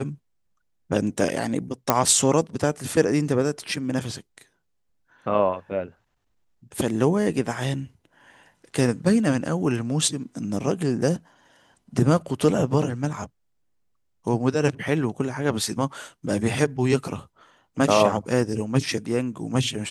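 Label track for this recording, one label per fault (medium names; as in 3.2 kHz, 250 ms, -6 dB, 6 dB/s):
1.900000	1.900000	pop -2 dBFS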